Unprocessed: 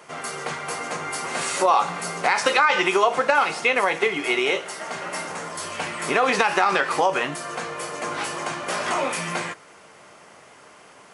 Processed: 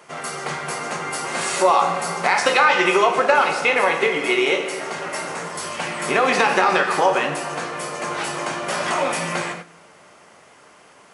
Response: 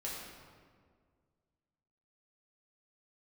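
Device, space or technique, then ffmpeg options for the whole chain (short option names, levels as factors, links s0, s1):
keyed gated reverb: -filter_complex "[0:a]asplit=3[s0][s1][s2];[1:a]atrim=start_sample=2205[s3];[s1][s3]afir=irnorm=-1:irlink=0[s4];[s2]apad=whole_len=491124[s5];[s4][s5]sidechaingate=range=0.2:threshold=0.00891:ratio=16:detection=peak,volume=0.794[s6];[s0][s6]amix=inputs=2:normalize=0,volume=0.841"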